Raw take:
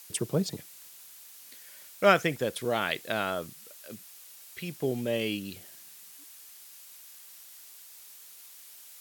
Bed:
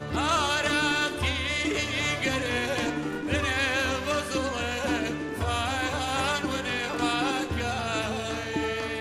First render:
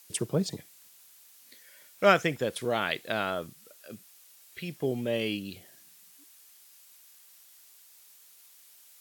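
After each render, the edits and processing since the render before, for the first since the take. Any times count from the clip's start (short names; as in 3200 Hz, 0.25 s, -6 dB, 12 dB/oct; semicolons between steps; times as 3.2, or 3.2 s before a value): noise print and reduce 6 dB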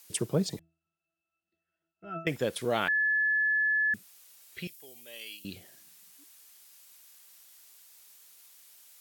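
0.59–2.27 octave resonator E, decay 0.34 s; 2.88–3.94 bleep 1720 Hz -23.5 dBFS; 4.67–5.45 differentiator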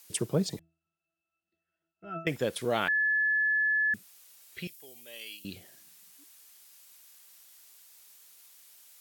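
nothing audible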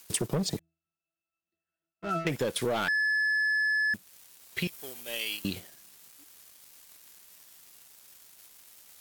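sample leveller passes 3; compressor 6:1, threshold -27 dBFS, peak gain reduction 9.5 dB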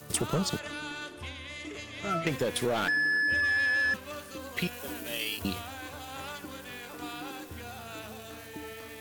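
add bed -13.5 dB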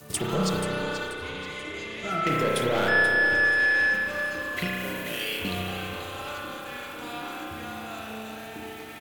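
on a send: feedback echo 0.483 s, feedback 36%, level -10.5 dB; on the sum: spring tank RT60 2.6 s, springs 32 ms, chirp 50 ms, DRR -3.5 dB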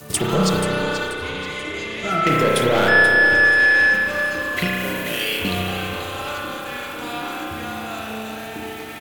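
gain +7.5 dB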